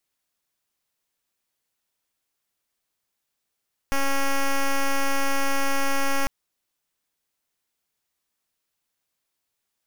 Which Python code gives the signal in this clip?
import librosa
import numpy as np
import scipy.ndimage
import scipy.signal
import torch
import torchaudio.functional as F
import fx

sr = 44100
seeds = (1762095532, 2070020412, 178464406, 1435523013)

y = fx.pulse(sr, length_s=2.35, hz=275.0, level_db=-21.0, duty_pct=7)